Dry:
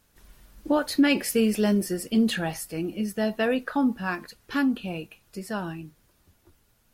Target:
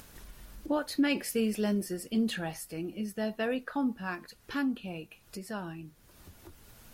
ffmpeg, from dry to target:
-af "acompressor=mode=upward:threshold=0.0316:ratio=2.5,volume=0.447"

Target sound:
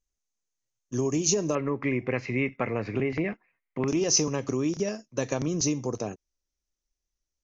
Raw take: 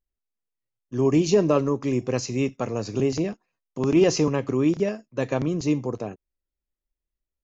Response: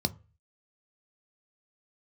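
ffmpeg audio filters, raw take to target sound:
-af "acompressor=threshold=0.0631:ratio=5,asetnsamples=n=441:p=0,asendcmd='1.55 lowpass f 2100;3.88 lowpass f 6000',lowpass=f=6400:t=q:w=6.8"

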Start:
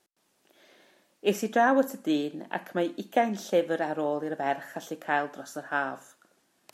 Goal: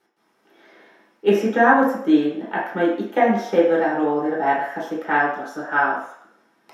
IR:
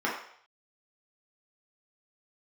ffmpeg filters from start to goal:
-filter_complex "[1:a]atrim=start_sample=2205[s0];[0:a][s0]afir=irnorm=-1:irlink=0,volume=0.794"

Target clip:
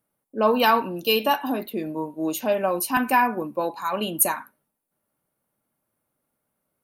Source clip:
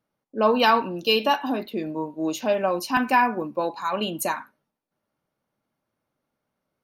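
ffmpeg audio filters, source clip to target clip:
-af "highshelf=f=7600:t=q:w=1.5:g=11"

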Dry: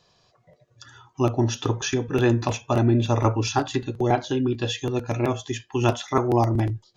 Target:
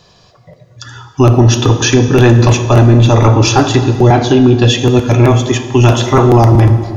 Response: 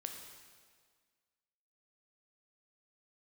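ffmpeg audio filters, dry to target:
-filter_complex "[0:a]asplit=2[s0][s1];[1:a]atrim=start_sample=2205,lowshelf=f=270:g=7.5[s2];[s1][s2]afir=irnorm=-1:irlink=0,volume=1.41[s3];[s0][s3]amix=inputs=2:normalize=0,apsyclip=3.55,volume=0.794"

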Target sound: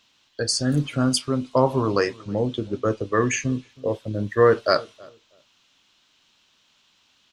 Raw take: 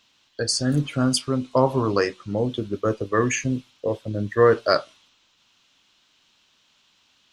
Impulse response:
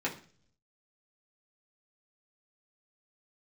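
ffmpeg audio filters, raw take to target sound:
-filter_complex "[0:a]asettb=1/sr,asplit=3[s0][s1][s2];[s0]atrim=end=2.174[s3];[s1]atrim=start=2.17:end=3.7,asetpts=PTS-STARTPTS,afade=t=in:d=0.004:c=qsin,afade=t=out:st=1.526:d=0.004:c=qsin,lowpass=f=9300:w=0.5412,lowpass=f=9300:w=1.3066[s4];[s2]atrim=start=3.696[s5];[s3][s4]acrossfade=d=0.004:c1=hsin:c2=qsin[s6];[s6][s5]acrossfade=d=0.004:c1=qsin:c2=hsin,asplit=2[s7][s8];[s8]adelay=321,lowpass=f=810:p=1,volume=0.0794,asplit=2[s9][s10];[s10]adelay=321,lowpass=f=810:p=1,volume=0.22[s11];[s9][s11]amix=inputs=2:normalize=0[s12];[s7][s12]amix=inputs=2:normalize=0"

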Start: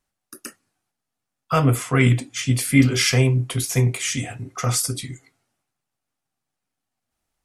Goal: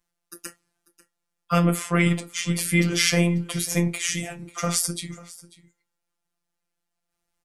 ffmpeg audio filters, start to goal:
-af "afftfilt=real='hypot(re,im)*cos(PI*b)':imag='0':win_size=1024:overlap=0.75,aecho=1:1:542:0.1,volume=1.26"

